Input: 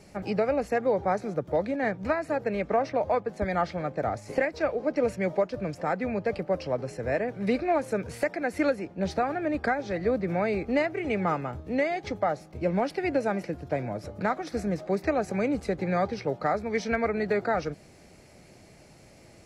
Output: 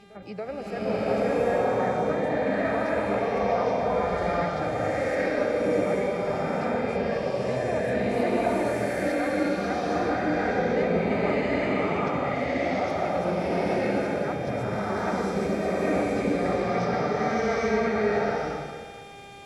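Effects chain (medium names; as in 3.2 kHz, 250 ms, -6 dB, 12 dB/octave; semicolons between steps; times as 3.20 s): pre-echo 283 ms -18.5 dB; mains buzz 400 Hz, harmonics 10, -47 dBFS -4 dB/octave; swelling reverb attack 840 ms, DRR -11.5 dB; trim -9 dB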